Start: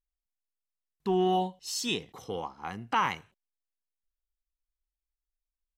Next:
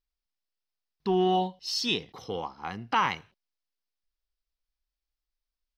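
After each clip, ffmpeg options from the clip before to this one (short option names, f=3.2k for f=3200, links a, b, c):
-af "highshelf=f=6.2k:t=q:w=3:g=-7,volume=1.5dB"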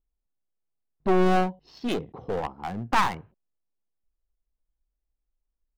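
-af "adynamicsmooth=sensitivity=1:basefreq=680,aeval=exprs='clip(val(0),-1,0.0133)':c=same,volume=8.5dB"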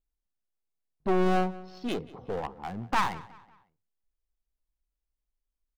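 -filter_complex "[0:a]asplit=2[a][b];[b]adelay=184,lowpass=f=4.9k:p=1,volume=-19.5dB,asplit=2[c][d];[d]adelay=184,lowpass=f=4.9k:p=1,volume=0.41,asplit=2[e][f];[f]adelay=184,lowpass=f=4.9k:p=1,volume=0.41[g];[a][c][e][g]amix=inputs=4:normalize=0,volume=-4dB"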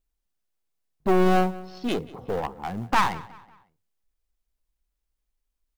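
-af "acrusher=bits=8:mode=log:mix=0:aa=0.000001,volume=5dB"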